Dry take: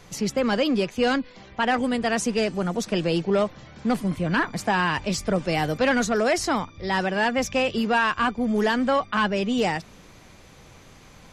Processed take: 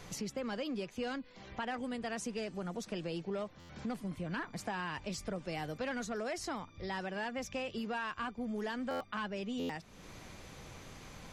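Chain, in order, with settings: compressor 2.5:1, threshold -42 dBFS, peak gain reduction 16 dB; stuck buffer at 3.59/8.9/9.59, samples 512; gain -1.5 dB

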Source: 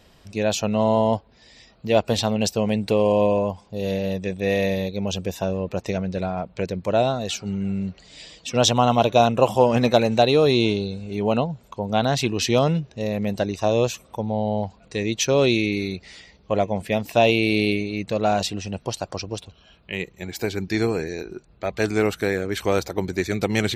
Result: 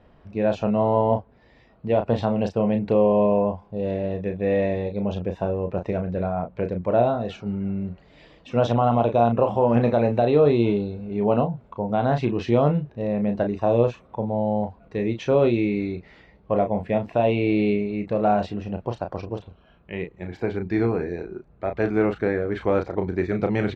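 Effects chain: limiter -8.5 dBFS, peak gain reduction 5.5 dB; LPF 1500 Hz 12 dB/oct; doubler 34 ms -7 dB

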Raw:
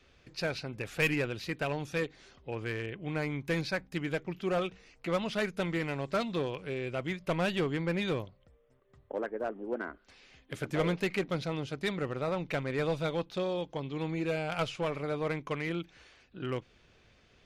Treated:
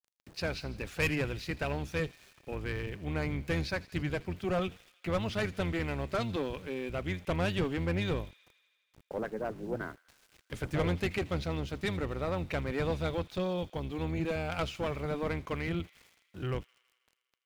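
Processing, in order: octaver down 1 oct, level 0 dB; tube stage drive 20 dB, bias 0.35; sample gate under -52.5 dBFS; thin delay 81 ms, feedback 75%, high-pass 2600 Hz, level -17 dB

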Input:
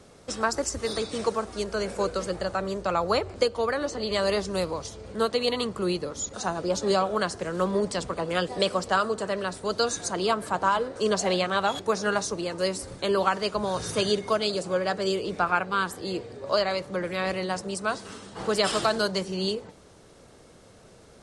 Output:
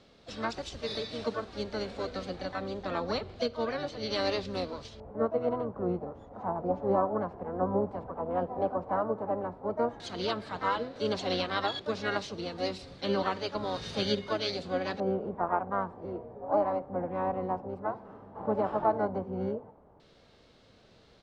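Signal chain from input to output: harmonic-percussive split percussive -7 dB; harmoniser -12 st -7 dB, +5 st -8 dB; LFO low-pass square 0.1 Hz 890–4000 Hz; gain -6.5 dB

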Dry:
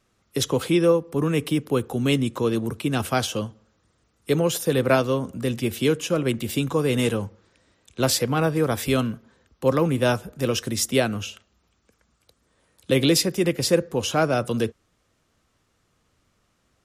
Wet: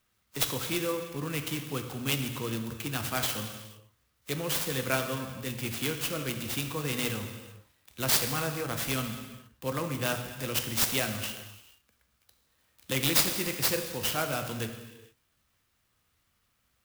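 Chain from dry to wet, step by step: passive tone stack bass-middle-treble 5-5-5; non-linear reverb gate 0.49 s falling, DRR 5 dB; clock jitter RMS 0.044 ms; gain +5.5 dB

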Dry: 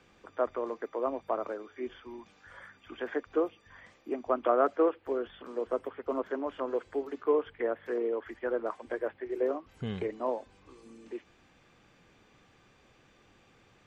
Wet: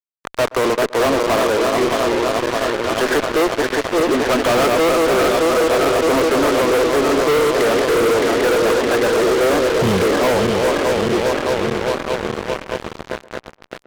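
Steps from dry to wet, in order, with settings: regenerating reverse delay 0.308 s, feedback 84%, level -7.5 dB; fuzz box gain 45 dB, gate -43 dBFS; tape echo 0.125 s, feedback 26%, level -17 dB, low-pass 1500 Hz

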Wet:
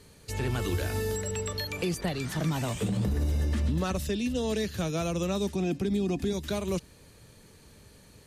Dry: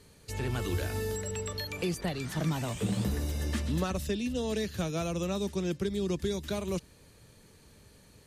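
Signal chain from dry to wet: 2.88–3.81 tilt -1.5 dB/oct; 5.54–6.33 small resonant body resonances 260/720/2500 Hz, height 15 dB; limiter -23.5 dBFS, peak gain reduction 8 dB; gain +3 dB

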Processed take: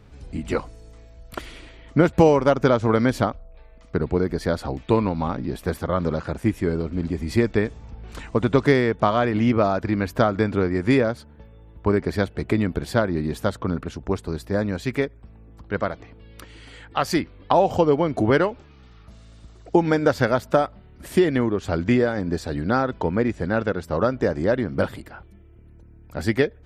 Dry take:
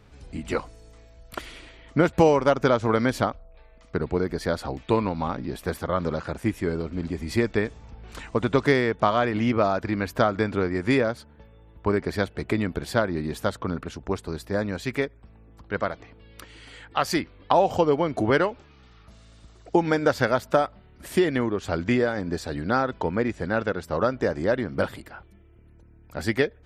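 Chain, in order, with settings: low shelf 480 Hz +5 dB

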